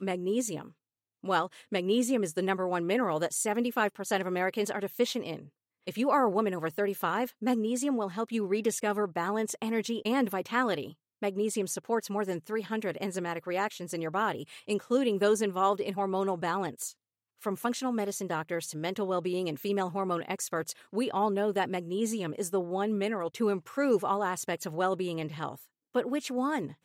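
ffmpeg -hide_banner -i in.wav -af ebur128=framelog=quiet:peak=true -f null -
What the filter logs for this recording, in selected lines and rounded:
Integrated loudness:
  I:         -30.9 LUFS
  Threshold: -41.1 LUFS
Loudness range:
  LRA:         3.0 LU
  Threshold: -51.0 LUFS
  LRA low:   -32.8 LUFS
  LRA high:  -29.8 LUFS
True peak:
  Peak:      -13.5 dBFS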